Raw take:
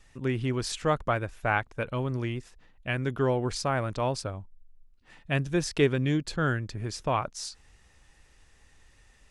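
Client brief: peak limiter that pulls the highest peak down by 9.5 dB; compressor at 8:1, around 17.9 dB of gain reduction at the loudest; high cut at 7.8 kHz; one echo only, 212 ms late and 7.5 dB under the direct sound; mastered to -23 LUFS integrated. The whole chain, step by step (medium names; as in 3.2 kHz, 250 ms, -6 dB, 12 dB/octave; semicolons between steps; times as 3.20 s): low-pass 7.8 kHz; compression 8:1, threshold -36 dBFS; peak limiter -34.5 dBFS; delay 212 ms -7.5 dB; trim +21.5 dB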